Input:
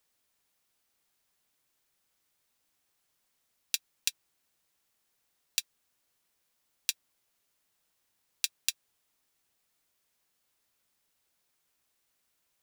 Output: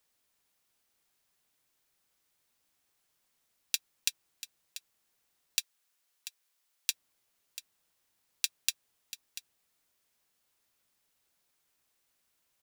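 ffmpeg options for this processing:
-filter_complex "[0:a]asettb=1/sr,asplit=3[s0][s1][s2];[s0]atrim=end=5.604[s3];[s1]atrim=start=5.6:end=6.9,asetpts=PTS-STARTPTS,afade=t=in:d=0.004:c=qsin,afade=t=out:st=1.296:d=0.004:c=qsin,highpass=f=1000:p=1[s4];[s2]atrim=start=6.896[s5];[s3][s4]acrossfade=d=0.004:c1=hsin:c2=qsin[s6];[s6][s5]acrossfade=d=0.004:c1=qsin:c2=hsin,asplit=2[s7][s8];[s8]aecho=0:1:689:0.211[s9];[s7][s9]amix=inputs=2:normalize=0"

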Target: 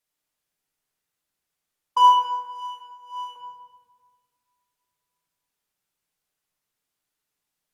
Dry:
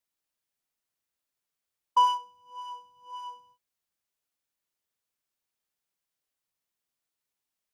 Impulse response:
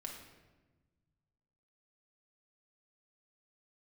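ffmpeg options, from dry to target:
-filter_complex "[0:a]asettb=1/sr,asplit=3[s0][s1][s2];[s0]atrim=end=2.244[s3];[s1]atrim=start=2.24:end=3.36,asetpts=PTS-STARTPTS,afade=t=in:d=0.004:c=qsin,afade=t=out:st=1.116:d=0.004:c=qsin,highpass=f=590:w=0.5412,highpass=f=590:w=1.3066[s4];[s2]atrim=start=3.356[s5];[s3][s4]acrossfade=d=0.004:c1=hsin:c2=qsin[s6];[s6][s5]acrossfade=d=0.004:c1=qsin:c2=hsin[s7];[1:a]atrim=start_sample=2205,asetrate=30429,aresample=44100[s8];[s7][s8]afir=irnorm=-1:irlink=0,volume=2"

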